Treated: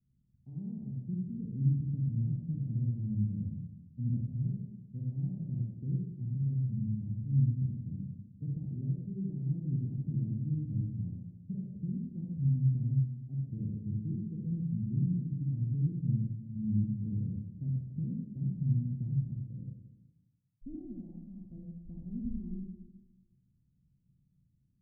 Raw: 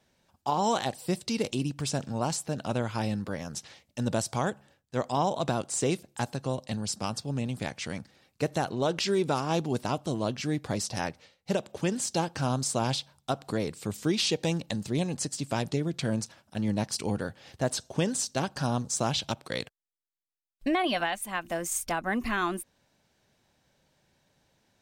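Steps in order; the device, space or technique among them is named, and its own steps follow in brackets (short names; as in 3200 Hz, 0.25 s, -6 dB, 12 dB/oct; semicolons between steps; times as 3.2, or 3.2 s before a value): club heard from the street (limiter -21 dBFS, peak gain reduction 6 dB; LPF 190 Hz 24 dB/oct; reverb RT60 1.1 s, pre-delay 40 ms, DRR -1 dB); gain -1.5 dB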